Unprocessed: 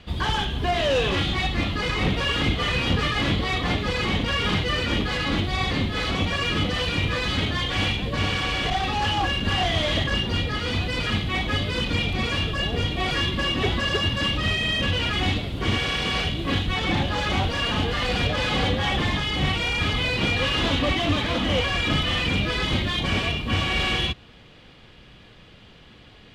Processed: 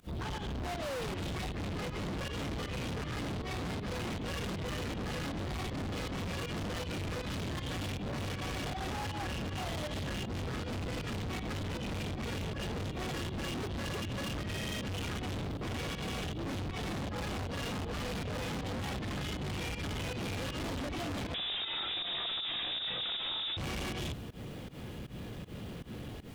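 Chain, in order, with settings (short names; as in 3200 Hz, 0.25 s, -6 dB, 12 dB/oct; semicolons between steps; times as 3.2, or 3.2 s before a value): HPF 97 Hz 6 dB/oct; tilt shelf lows +8 dB, about 690 Hz; AGC gain up to 8.5 dB; added noise pink -53 dBFS; pump 158 bpm, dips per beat 1, -24 dB, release 0.133 s; soft clip -33.5 dBFS, distortion -2 dB; 21.34–23.57 inverted band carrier 3700 Hz; gain -2.5 dB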